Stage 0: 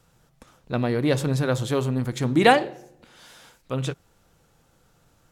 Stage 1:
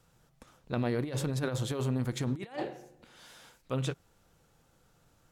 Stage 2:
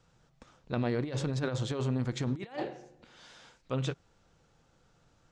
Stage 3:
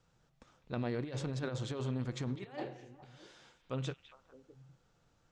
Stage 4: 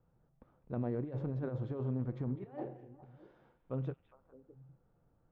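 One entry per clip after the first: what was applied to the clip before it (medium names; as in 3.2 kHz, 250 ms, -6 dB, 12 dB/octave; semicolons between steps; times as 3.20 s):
compressor with a negative ratio -24 dBFS, ratio -0.5; trim -7.5 dB
low-pass 7 kHz 24 dB/octave
repeats whose band climbs or falls 204 ms, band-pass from 2.6 kHz, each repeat -1.4 oct, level -10 dB; trim -5.5 dB
Bessel low-pass 710 Hz, order 2; trim +1 dB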